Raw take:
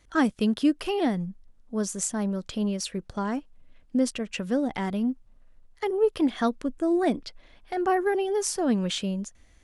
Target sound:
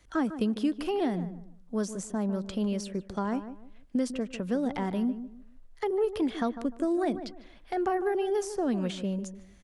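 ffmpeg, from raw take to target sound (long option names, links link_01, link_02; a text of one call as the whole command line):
ffmpeg -i in.wav -filter_complex "[0:a]acrossover=split=170|1200[link_01][link_02][link_03];[link_01]acompressor=threshold=-42dB:ratio=4[link_04];[link_02]acompressor=threshold=-26dB:ratio=4[link_05];[link_03]acompressor=threshold=-43dB:ratio=4[link_06];[link_04][link_05][link_06]amix=inputs=3:normalize=0,asplit=2[link_07][link_08];[link_08]adelay=150,lowpass=frequency=1400:poles=1,volume=-11dB,asplit=2[link_09][link_10];[link_10]adelay=150,lowpass=frequency=1400:poles=1,volume=0.28,asplit=2[link_11][link_12];[link_12]adelay=150,lowpass=frequency=1400:poles=1,volume=0.28[link_13];[link_09][link_11][link_13]amix=inputs=3:normalize=0[link_14];[link_07][link_14]amix=inputs=2:normalize=0" out.wav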